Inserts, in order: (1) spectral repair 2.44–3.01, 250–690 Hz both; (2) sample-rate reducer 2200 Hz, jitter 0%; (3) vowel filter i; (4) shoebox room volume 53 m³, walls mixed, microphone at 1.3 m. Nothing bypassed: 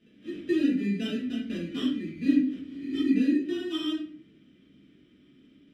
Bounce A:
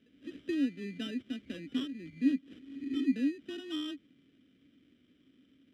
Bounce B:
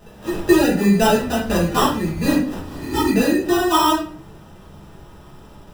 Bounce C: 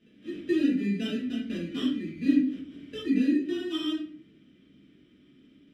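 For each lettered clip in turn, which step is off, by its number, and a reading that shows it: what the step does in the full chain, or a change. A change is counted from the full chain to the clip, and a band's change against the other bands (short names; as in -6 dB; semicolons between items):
4, echo-to-direct 6.0 dB to none; 3, 250 Hz band -9.0 dB; 1, momentary loudness spread change +3 LU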